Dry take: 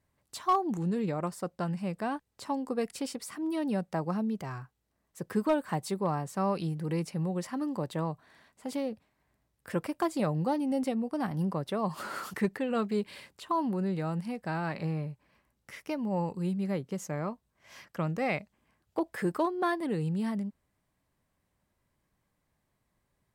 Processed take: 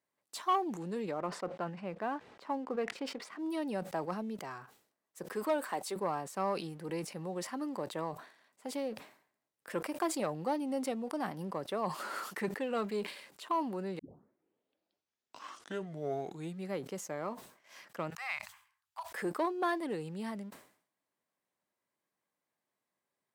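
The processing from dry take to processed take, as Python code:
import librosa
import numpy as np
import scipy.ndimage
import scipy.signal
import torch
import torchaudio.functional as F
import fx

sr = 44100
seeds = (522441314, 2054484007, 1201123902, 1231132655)

y = fx.lowpass(x, sr, hz=2600.0, slope=12, at=(1.11, 3.39))
y = fx.highpass(y, sr, hz=280.0, slope=12, at=(5.34, 5.96))
y = fx.cheby1_bandstop(y, sr, low_hz=100.0, high_hz=980.0, order=3, at=(18.1, 19.12))
y = fx.edit(y, sr, fx.tape_start(start_s=13.99, length_s=2.72), tone=tone)
y = fx.leveller(y, sr, passes=1)
y = scipy.signal.sosfilt(scipy.signal.butter(2, 310.0, 'highpass', fs=sr, output='sos'), y)
y = fx.sustainer(y, sr, db_per_s=110.0)
y = y * 10.0 ** (-5.5 / 20.0)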